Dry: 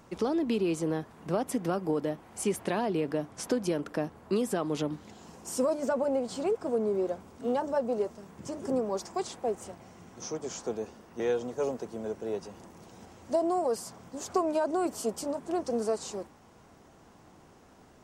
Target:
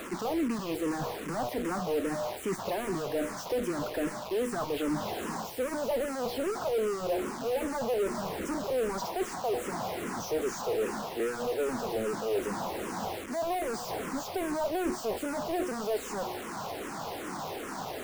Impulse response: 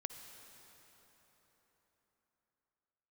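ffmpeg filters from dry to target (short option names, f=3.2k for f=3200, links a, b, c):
-filter_complex "[0:a]bandreject=f=121.3:t=h:w=4,bandreject=f=242.6:t=h:w=4,bandreject=f=363.9:t=h:w=4,bandreject=f=485.2:t=h:w=4,bandreject=f=606.5:t=h:w=4,bandreject=f=727.8:t=h:w=4,bandreject=f=849.1:t=h:w=4,bandreject=f=970.4:t=h:w=4,bandreject=f=1.0917k:t=h:w=4,bandreject=f=1.213k:t=h:w=4,areverse,acompressor=threshold=-37dB:ratio=10,areverse,tremolo=f=190:d=0.261,asplit=2[a][b];[b]highpass=f=720:p=1,volume=29dB,asoftclip=type=tanh:threshold=-29dB[c];[a][c]amix=inputs=2:normalize=0,lowpass=f=1.1k:p=1,volume=-6dB,acrossover=split=430[d][e];[e]acrusher=bits=7:mix=0:aa=0.000001[f];[d][f]amix=inputs=2:normalize=0,asplit=2[g][h];[h]afreqshift=-2.5[i];[g][i]amix=inputs=2:normalize=1,volume=8.5dB"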